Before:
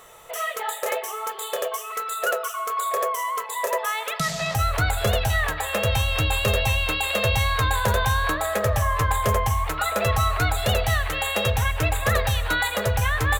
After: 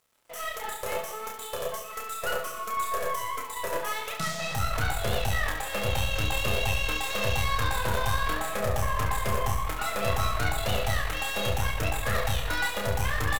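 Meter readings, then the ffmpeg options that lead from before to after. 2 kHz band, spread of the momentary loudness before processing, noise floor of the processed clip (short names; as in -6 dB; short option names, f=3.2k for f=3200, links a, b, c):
-5.5 dB, 6 LU, -39 dBFS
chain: -af "aeval=exprs='sgn(val(0))*max(abs(val(0))-0.00708,0)':c=same,aeval=exprs='(tanh(11.2*val(0)+0.75)-tanh(0.75))/11.2':c=same,aecho=1:1:30|69|119.7|185.6|271.3:0.631|0.398|0.251|0.158|0.1,volume=-2.5dB"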